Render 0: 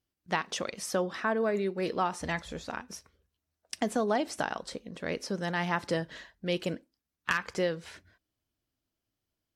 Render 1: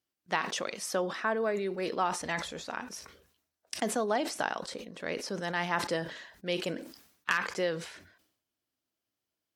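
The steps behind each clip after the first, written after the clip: high-pass 320 Hz 6 dB/octave; decay stretcher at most 83 dB/s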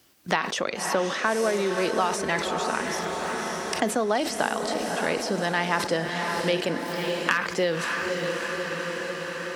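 echo that smears into a reverb 570 ms, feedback 57%, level -8 dB; three bands compressed up and down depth 70%; trim +6 dB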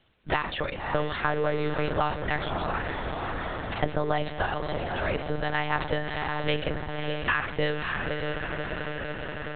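monotone LPC vocoder at 8 kHz 150 Hz; trim -2 dB

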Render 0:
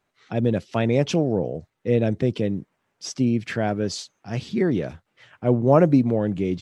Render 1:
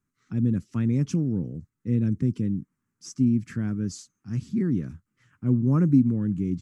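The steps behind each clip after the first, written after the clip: FFT filter 260 Hz 0 dB, 670 Hz -29 dB, 1.2 kHz -9 dB, 3.6 kHz -20 dB, 6.8 kHz -4 dB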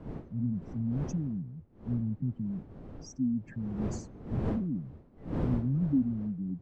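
spectral contrast enhancement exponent 2.4; wind noise 260 Hz -32 dBFS; trim -8 dB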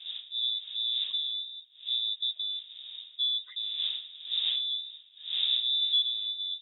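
frequency inversion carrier 3.7 kHz

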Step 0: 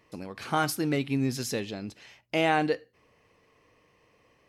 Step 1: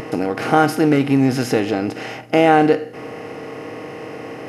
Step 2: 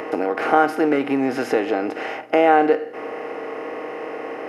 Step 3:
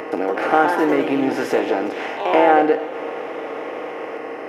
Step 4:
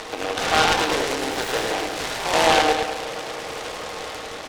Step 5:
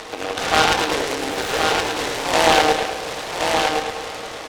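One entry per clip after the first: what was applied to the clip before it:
spectral levelling over time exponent 0.4; in parallel at -1 dB: compression, threshold -30 dBFS, peak gain reduction 13 dB; on the sum: spectral contrast expander 1.5:1; trim +4.5 dB
three-band isolator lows -24 dB, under 300 Hz, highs -13 dB, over 2.5 kHz; in parallel at 0 dB: compression, threshold -23 dBFS, peak gain reduction 13 dB; on the sum: trim -2.5 dB
reverberation RT60 3.7 s, pre-delay 78 ms, DRR 15.5 dB; ever faster or slower copies 173 ms, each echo +2 st, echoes 3, each echo -6 dB
band-pass filter 2.7 kHz, Q 0.56; feedback delay 105 ms, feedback 53%, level -4 dB; delay time shaken by noise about 1.7 kHz, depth 0.11 ms; trim +2 dB
Chebyshev shaper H 7 -28 dB, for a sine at -3.5 dBFS; on a send: delay 1071 ms -4.5 dB; on the sum: trim +2.5 dB

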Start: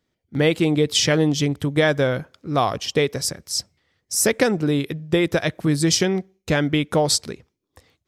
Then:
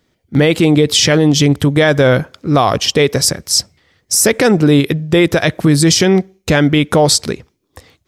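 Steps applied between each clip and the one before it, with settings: loudness maximiser +13.5 dB; trim -1 dB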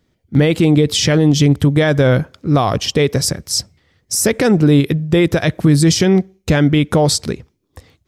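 bass shelf 260 Hz +8 dB; trim -5 dB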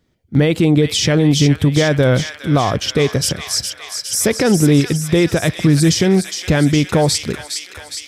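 feedback echo behind a high-pass 412 ms, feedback 68%, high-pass 1.6 kHz, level -6 dB; trim -1 dB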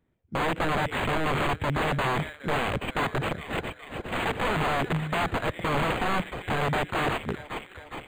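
integer overflow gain 11 dB; decimation joined by straight lines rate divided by 8×; trim -8.5 dB

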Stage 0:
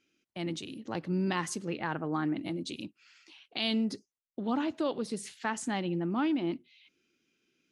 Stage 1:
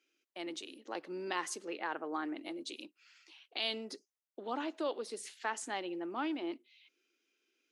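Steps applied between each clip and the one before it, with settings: high-pass 340 Hz 24 dB/octave; trim -3 dB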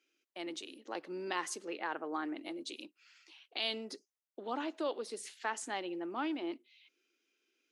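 no audible change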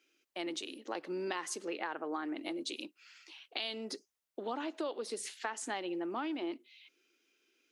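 compression 6:1, threshold -39 dBFS, peak gain reduction 9.5 dB; trim +5 dB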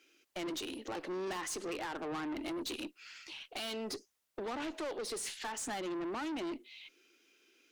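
valve stage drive 43 dB, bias 0.25; trim +7 dB

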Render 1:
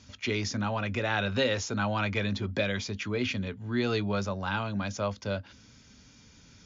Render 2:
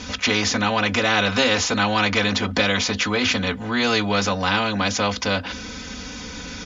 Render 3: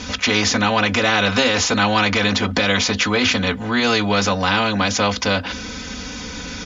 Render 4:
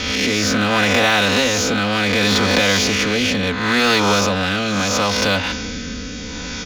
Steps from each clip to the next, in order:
low-pass 3.5 kHz 6 dB/octave; comb 4 ms, depth 94%; spectrum-flattening compressor 2:1; trim +8.5 dB
loudness maximiser +8.5 dB; trim -5 dB
reverse spectral sustain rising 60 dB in 1.07 s; rotary cabinet horn 0.7 Hz; in parallel at -9 dB: wavefolder -19.5 dBFS

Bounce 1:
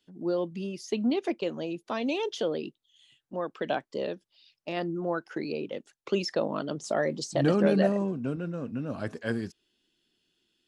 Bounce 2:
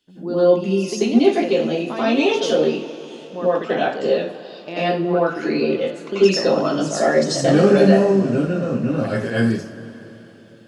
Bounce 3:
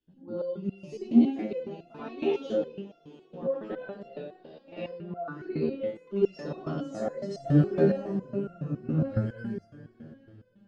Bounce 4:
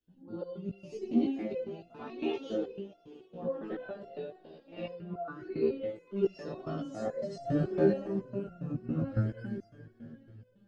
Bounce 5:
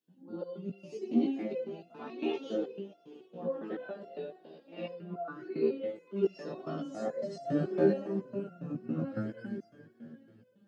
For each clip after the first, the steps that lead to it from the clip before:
in parallel at 0 dB: peak limiter -22.5 dBFS, peak gain reduction 10.5 dB; on the sum: reverberation, pre-delay 82 ms, DRR -10 dB; trim -3.5 dB
RIAA curve playback; resonator arpeggio 7.2 Hz 79–690 Hz; trim -5.5 dB
chorus voices 4, 0.33 Hz, delay 17 ms, depth 1.7 ms
high-pass 160 Hz 24 dB/octave

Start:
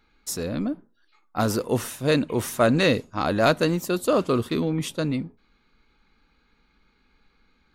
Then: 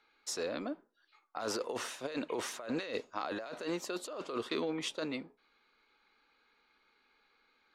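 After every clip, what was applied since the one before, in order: three-band isolator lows -24 dB, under 350 Hz, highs -20 dB, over 7.2 kHz; compressor with a negative ratio -30 dBFS, ratio -1; trim -7 dB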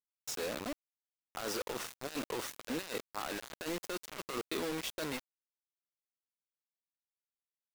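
word length cut 6-bit, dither none; trim -2.5 dB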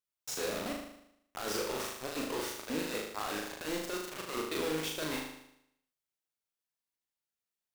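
flutter echo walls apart 6.6 m, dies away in 0.76 s

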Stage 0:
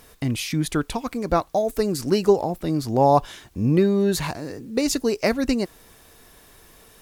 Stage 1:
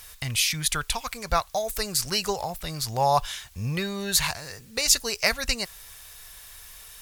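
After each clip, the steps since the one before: amplifier tone stack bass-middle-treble 10-0-10; trim +8.5 dB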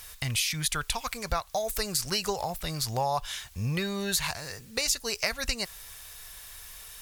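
compression 4:1, threshold -25 dBFS, peak gain reduction 9.5 dB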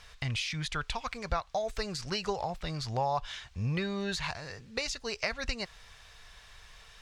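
distance through air 140 m; trim -1.5 dB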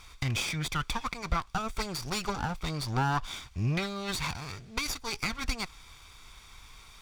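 comb filter that takes the minimum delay 0.87 ms; trim +3.5 dB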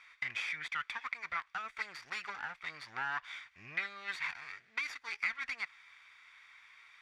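band-pass filter 1.9 kHz, Q 4.2; trim +5 dB

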